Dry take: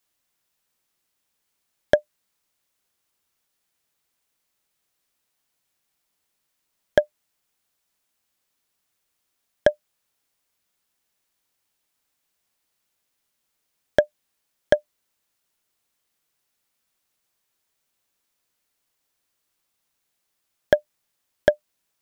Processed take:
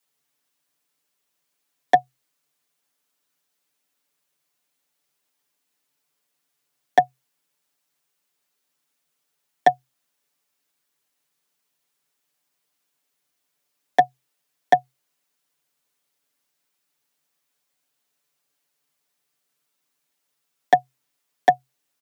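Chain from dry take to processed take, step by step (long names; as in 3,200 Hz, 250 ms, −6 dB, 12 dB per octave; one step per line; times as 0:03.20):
comb filter 6.7 ms, depth 79%
frequency shifter +130 Hz
level −2 dB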